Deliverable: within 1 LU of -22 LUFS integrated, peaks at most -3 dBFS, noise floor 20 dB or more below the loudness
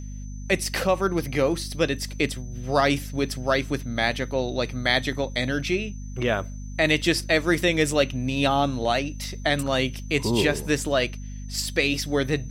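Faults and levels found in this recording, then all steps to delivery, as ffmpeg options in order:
hum 50 Hz; harmonics up to 250 Hz; hum level -33 dBFS; steady tone 6100 Hz; tone level -50 dBFS; loudness -24.5 LUFS; peak -6.5 dBFS; loudness target -22.0 LUFS
-> -af "bandreject=f=50:t=h:w=4,bandreject=f=100:t=h:w=4,bandreject=f=150:t=h:w=4,bandreject=f=200:t=h:w=4,bandreject=f=250:t=h:w=4"
-af "bandreject=f=6.1k:w=30"
-af "volume=2.5dB"

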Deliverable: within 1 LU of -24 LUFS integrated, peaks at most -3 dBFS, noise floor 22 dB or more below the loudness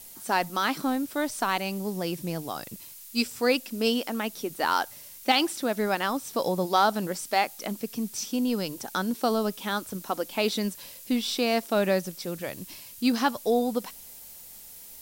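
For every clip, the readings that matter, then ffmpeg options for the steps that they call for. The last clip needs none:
noise floor -46 dBFS; noise floor target -50 dBFS; loudness -28.0 LUFS; peak -9.0 dBFS; loudness target -24.0 LUFS
-> -af "afftdn=nr=6:nf=-46"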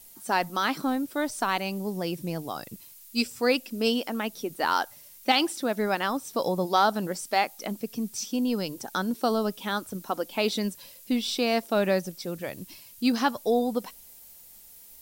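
noise floor -50 dBFS; loudness -28.0 LUFS; peak -9.0 dBFS; loudness target -24.0 LUFS
-> -af "volume=4dB"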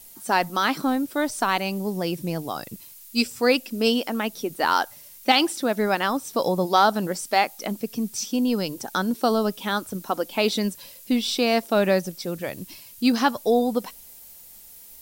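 loudness -24.0 LUFS; peak -5.0 dBFS; noise floor -46 dBFS

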